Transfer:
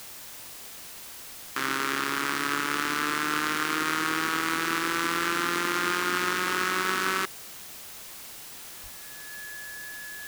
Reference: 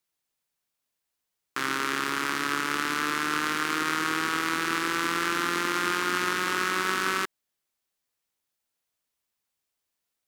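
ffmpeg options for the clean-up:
-filter_complex "[0:a]bandreject=f=1700:w=30,asplit=3[s0][s1][s2];[s0]afade=t=out:st=8.82:d=0.02[s3];[s1]highpass=f=140:w=0.5412,highpass=f=140:w=1.3066,afade=t=in:st=8.82:d=0.02,afade=t=out:st=8.94:d=0.02[s4];[s2]afade=t=in:st=8.94:d=0.02[s5];[s3][s4][s5]amix=inputs=3:normalize=0,afwtdn=0.0071"

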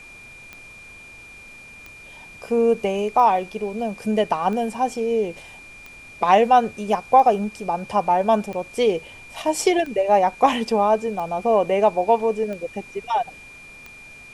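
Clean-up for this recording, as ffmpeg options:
-af "adeclick=t=4,bandreject=f=2400:w=30,agate=range=0.0891:threshold=0.0178"

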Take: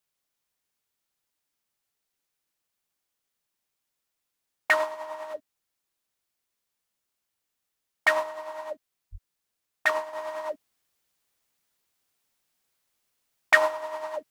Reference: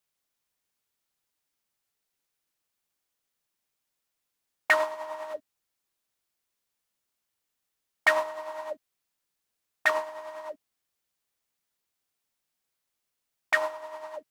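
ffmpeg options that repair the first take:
-filter_complex "[0:a]asplit=3[s0][s1][s2];[s0]afade=t=out:st=9.11:d=0.02[s3];[s1]highpass=f=140:w=0.5412,highpass=f=140:w=1.3066,afade=t=in:st=9.11:d=0.02,afade=t=out:st=9.23:d=0.02[s4];[s2]afade=t=in:st=9.23:d=0.02[s5];[s3][s4][s5]amix=inputs=3:normalize=0,asetnsamples=n=441:p=0,asendcmd='10.13 volume volume -6dB',volume=1"

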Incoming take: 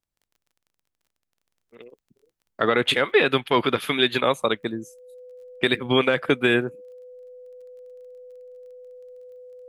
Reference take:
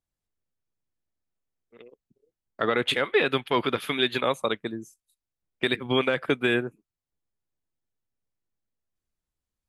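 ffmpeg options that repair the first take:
-af "adeclick=t=4,bandreject=f=500:w=30,asetnsamples=n=441:p=0,asendcmd='1.44 volume volume -4dB',volume=1"

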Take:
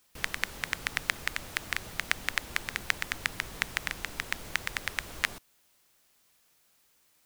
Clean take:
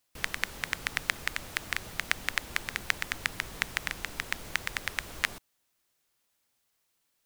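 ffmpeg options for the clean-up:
-af "agate=range=0.0891:threshold=0.00112"

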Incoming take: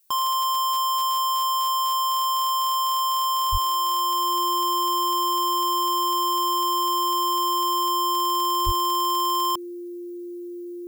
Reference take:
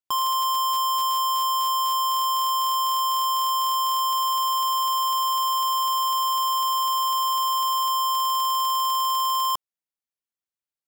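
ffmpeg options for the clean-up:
-filter_complex "[0:a]bandreject=f=350:w=30,asplit=3[s0][s1][s2];[s0]afade=t=out:st=3.51:d=0.02[s3];[s1]highpass=f=140:w=0.5412,highpass=f=140:w=1.3066,afade=t=in:st=3.51:d=0.02,afade=t=out:st=3.63:d=0.02[s4];[s2]afade=t=in:st=3.63:d=0.02[s5];[s3][s4][s5]amix=inputs=3:normalize=0,asplit=3[s6][s7][s8];[s6]afade=t=out:st=8.65:d=0.02[s9];[s7]highpass=f=140:w=0.5412,highpass=f=140:w=1.3066,afade=t=in:st=8.65:d=0.02,afade=t=out:st=8.77:d=0.02[s10];[s8]afade=t=in:st=8.77:d=0.02[s11];[s9][s10][s11]amix=inputs=3:normalize=0,agate=range=0.0891:threshold=0.0447"

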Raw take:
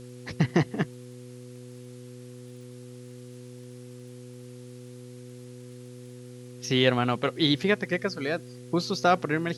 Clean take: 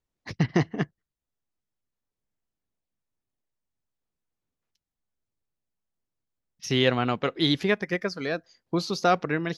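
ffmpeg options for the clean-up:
-af "adeclick=t=4,bandreject=f=123.8:t=h:w=4,bandreject=f=247.6:t=h:w=4,bandreject=f=371.4:t=h:w=4,bandreject=f=495.2:t=h:w=4,agate=range=0.0891:threshold=0.0141"

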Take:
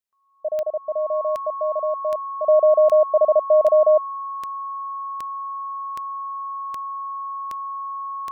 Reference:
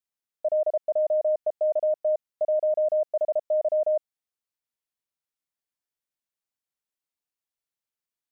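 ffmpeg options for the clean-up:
-af "adeclick=t=4,bandreject=f=1100:w=30,asetnsamples=n=441:p=0,asendcmd='2.47 volume volume -9dB',volume=1"

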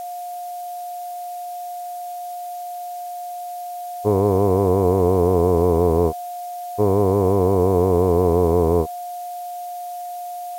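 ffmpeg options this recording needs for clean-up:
-af "bandreject=f=710:w=30,afftdn=nr=30:nf=-31"

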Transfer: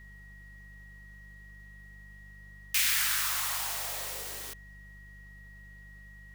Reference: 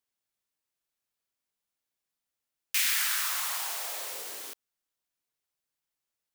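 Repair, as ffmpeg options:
-af "bandreject=f=49.9:t=h:w=4,bandreject=f=99.8:t=h:w=4,bandreject=f=149.7:t=h:w=4,bandreject=f=199.6:t=h:w=4,bandreject=f=1900:w=30,agate=range=0.0891:threshold=0.00794"

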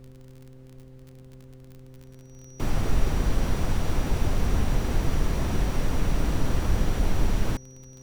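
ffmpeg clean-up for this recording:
-af "adeclick=t=4,bandreject=f=130.1:t=h:w=4,bandreject=f=260.2:t=h:w=4,bandreject=f=390.3:t=h:w=4,bandreject=f=520.4:t=h:w=4,bandreject=f=5800:w=30,agate=range=0.0891:threshold=0.0112"

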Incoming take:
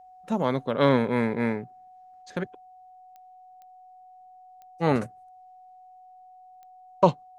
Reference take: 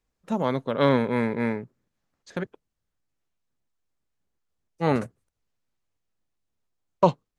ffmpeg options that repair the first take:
-af "adeclick=t=4,bandreject=f=740:w=30"

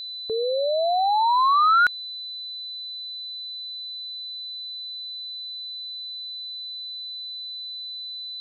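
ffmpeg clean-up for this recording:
-af "bandreject=f=4000:w=30,agate=range=0.0891:threshold=0.0447"

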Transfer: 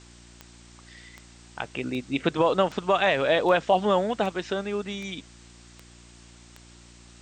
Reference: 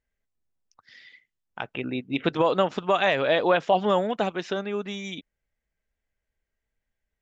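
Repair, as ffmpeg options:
-af "adeclick=t=4,bandreject=f=58.8:t=h:w=4,bandreject=f=117.6:t=h:w=4,bandreject=f=176.4:t=h:w=4,bandreject=f=235.2:t=h:w=4,bandreject=f=294:t=h:w=4,bandreject=f=352.8:t=h:w=4,afwtdn=0.0028"

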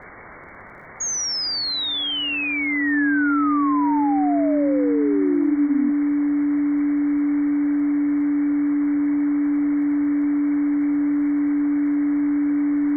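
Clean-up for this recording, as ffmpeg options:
-af "adeclick=t=4,bandreject=f=290:w=30,afftdn=nr=30:nf=-25"

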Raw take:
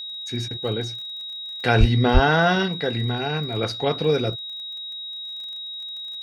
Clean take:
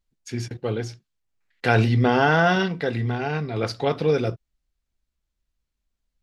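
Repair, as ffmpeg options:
-filter_complex "[0:a]adeclick=t=4,bandreject=f=3800:w=30,asplit=3[s0][s1][s2];[s0]afade=t=out:st=1.79:d=0.02[s3];[s1]highpass=f=140:w=0.5412,highpass=f=140:w=1.3066,afade=t=in:st=1.79:d=0.02,afade=t=out:st=1.91:d=0.02[s4];[s2]afade=t=in:st=1.91:d=0.02[s5];[s3][s4][s5]amix=inputs=3:normalize=0,asplit=3[s6][s7][s8];[s6]afade=t=out:st=2.13:d=0.02[s9];[s7]highpass=f=140:w=0.5412,highpass=f=140:w=1.3066,afade=t=in:st=2.13:d=0.02,afade=t=out:st=2.25:d=0.02[s10];[s8]afade=t=in:st=2.25:d=0.02[s11];[s9][s10][s11]amix=inputs=3:normalize=0"

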